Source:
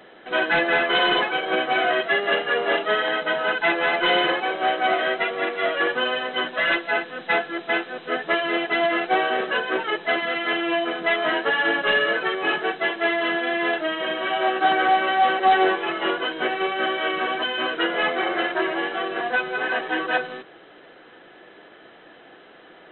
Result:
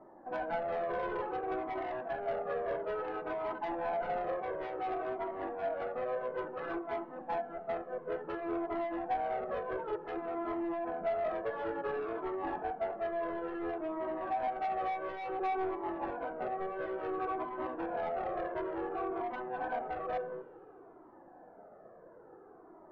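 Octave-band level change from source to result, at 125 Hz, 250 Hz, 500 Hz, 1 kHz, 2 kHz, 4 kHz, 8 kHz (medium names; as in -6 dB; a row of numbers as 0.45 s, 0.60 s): -8.0 dB, -11.5 dB, -10.5 dB, -13.0 dB, -24.5 dB, under -30 dB, no reading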